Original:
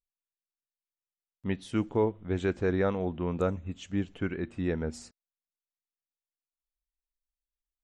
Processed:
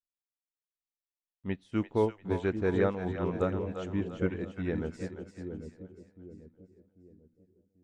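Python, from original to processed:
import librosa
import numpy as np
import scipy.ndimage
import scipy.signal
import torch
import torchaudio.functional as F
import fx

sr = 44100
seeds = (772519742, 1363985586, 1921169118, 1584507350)

p1 = fx.high_shelf(x, sr, hz=5800.0, db=-7.0)
p2 = p1 + fx.echo_split(p1, sr, split_hz=500.0, low_ms=792, high_ms=344, feedback_pct=52, wet_db=-4.5, dry=0)
y = fx.upward_expand(p2, sr, threshold_db=-49.0, expansion=1.5)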